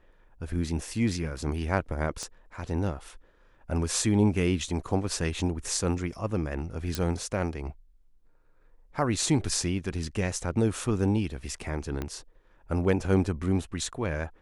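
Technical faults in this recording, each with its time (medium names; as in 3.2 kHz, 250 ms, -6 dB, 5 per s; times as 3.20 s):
2.23 s: pop -22 dBFS
6.95 s: pop -13 dBFS
12.02 s: pop -19 dBFS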